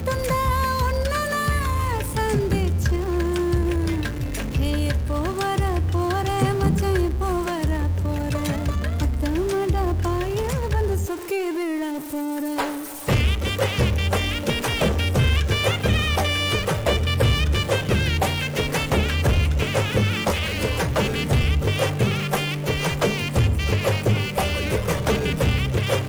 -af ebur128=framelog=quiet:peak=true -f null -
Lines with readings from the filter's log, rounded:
Integrated loudness:
  I:         -22.6 LUFS
  Threshold: -32.6 LUFS
Loudness range:
  LRA:         3.1 LU
  Threshold: -42.6 LUFS
  LRA low:   -24.2 LUFS
  LRA high:  -21.1 LUFS
True peak:
  Peak:      -10.3 dBFS